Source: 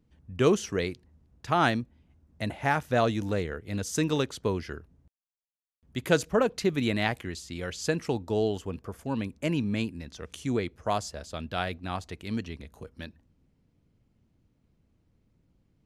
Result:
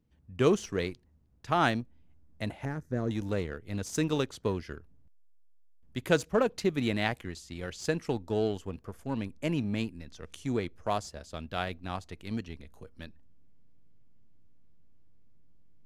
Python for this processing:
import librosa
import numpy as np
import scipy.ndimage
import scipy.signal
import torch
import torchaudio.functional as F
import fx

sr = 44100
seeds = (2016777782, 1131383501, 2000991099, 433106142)

p1 = fx.curve_eq(x, sr, hz=(390.0, 760.0, 1800.0, 2900.0, 6200.0, 10000.0), db=(0, -16, -10, -29, -9, -15), at=(2.65, 3.11))
p2 = fx.backlash(p1, sr, play_db=-26.5)
p3 = p1 + F.gain(torch.from_numpy(p2), -5.0).numpy()
y = F.gain(torch.from_numpy(p3), -5.5).numpy()